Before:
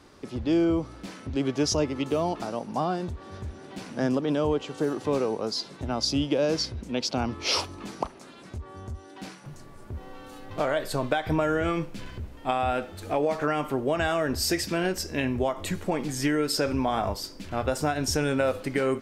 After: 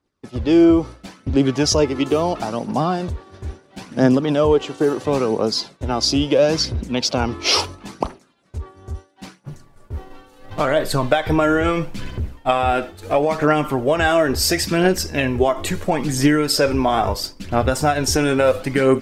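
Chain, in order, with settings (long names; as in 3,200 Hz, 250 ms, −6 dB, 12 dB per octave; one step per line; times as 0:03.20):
phase shifter 0.74 Hz, delay 3.1 ms, feedback 37%
downward expander −33 dBFS
level +8 dB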